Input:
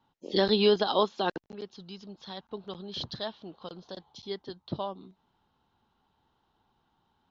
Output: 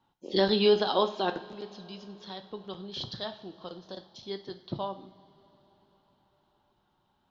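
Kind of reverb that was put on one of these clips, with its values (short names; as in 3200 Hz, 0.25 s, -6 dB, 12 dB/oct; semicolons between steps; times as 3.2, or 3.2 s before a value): two-slope reverb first 0.49 s, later 4.7 s, from -20 dB, DRR 7 dB; gain -1 dB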